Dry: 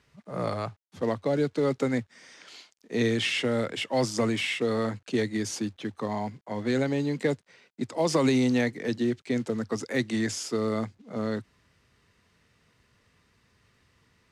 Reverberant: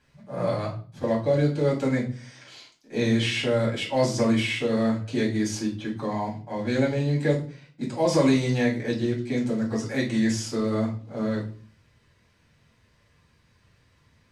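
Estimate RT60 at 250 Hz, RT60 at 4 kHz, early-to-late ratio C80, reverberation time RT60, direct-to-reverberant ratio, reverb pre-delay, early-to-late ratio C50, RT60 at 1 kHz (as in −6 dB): 0.65 s, 0.35 s, 14.5 dB, 0.40 s, −4.5 dB, 4 ms, 9.0 dB, 0.40 s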